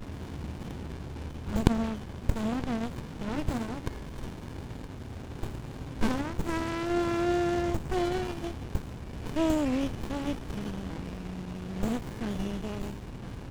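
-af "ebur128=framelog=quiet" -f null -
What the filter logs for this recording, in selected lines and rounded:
Integrated loudness:
  I:         -33.1 LUFS
  Threshold: -43.1 LUFS
Loudness range:
  LRA:         5.8 LU
  Threshold: -52.7 LUFS
  LRA low:   -36.2 LUFS
  LRA high:  -30.5 LUFS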